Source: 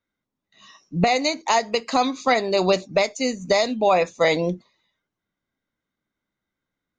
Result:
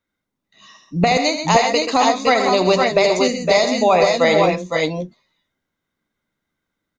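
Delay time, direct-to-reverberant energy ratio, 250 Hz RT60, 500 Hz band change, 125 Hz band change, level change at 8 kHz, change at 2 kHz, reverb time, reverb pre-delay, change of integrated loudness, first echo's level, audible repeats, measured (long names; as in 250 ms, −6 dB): 77 ms, no reverb audible, no reverb audible, +5.5 dB, +5.5 dB, +5.5 dB, +5.5 dB, no reverb audible, no reverb audible, +5.0 dB, −10.0 dB, 3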